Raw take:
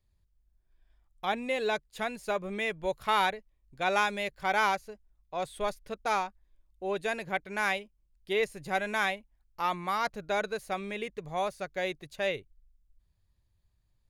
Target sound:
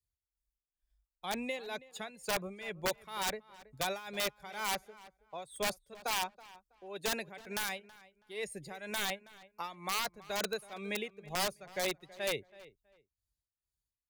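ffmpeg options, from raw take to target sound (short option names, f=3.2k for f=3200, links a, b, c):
-filter_complex "[0:a]highpass=41,afftdn=nr=18:nf=-47,acrossover=split=340|3800[a][b][c];[a]acompressor=threshold=-40dB:ratio=4[d];[c]acompressor=threshold=-52dB:ratio=4[e];[d][b][e]amix=inputs=3:normalize=0,acrossover=split=140|5000[f][g][h];[f]aphaser=in_gain=1:out_gain=1:delay=4.7:decay=0.51:speed=0.77:type=sinusoidal[i];[g]alimiter=limit=-24dB:level=0:latency=1:release=26[j];[h]aeval=exprs='0.01*sin(PI/2*4.47*val(0)/0.01)':c=same[k];[i][j][k]amix=inputs=3:normalize=0,tremolo=f=2.1:d=0.83,aeval=exprs='(mod(18.8*val(0)+1,2)-1)/18.8':c=same,asplit=2[l][m];[m]adelay=325,lowpass=f=2.9k:p=1,volume=-19dB,asplit=2[n][o];[o]adelay=325,lowpass=f=2.9k:p=1,volume=0.22[p];[n][p]amix=inputs=2:normalize=0[q];[l][q]amix=inputs=2:normalize=0"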